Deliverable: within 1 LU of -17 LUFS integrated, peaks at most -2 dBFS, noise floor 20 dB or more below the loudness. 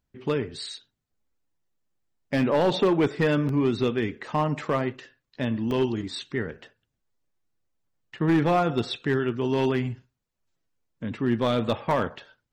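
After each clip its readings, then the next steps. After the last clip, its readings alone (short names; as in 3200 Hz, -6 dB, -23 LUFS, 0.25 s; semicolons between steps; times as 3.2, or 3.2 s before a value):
clipped 0.8%; flat tops at -15.5 dBFS; dropouts 3; longest dropout 1.7 ms; loudness -26.0 LUFS; peak -15.5 dBFS; loudness target -17.0 LUFS
-> clip repair -15.5 dBFS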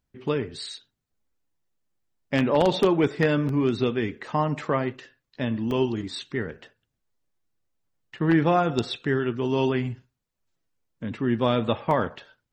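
clipped 0.0%; dropouts 3; longest dropout 1.7 ms
-> interpolate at 3.49/5.71/11.91, 1.7 ms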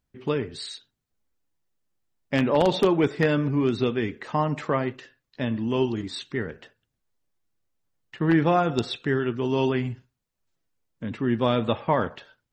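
dropouts 0; loudness -25.0 LUFS; peak -6.5 dBFS; loudness target -17.0 LUFS
-> gain +8 dB; limiter -2 dBFS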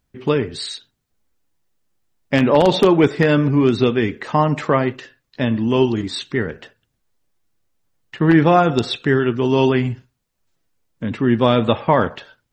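loudness -17.5 LUFS; peak -2.0 dBFS; noise floor -73 dBFS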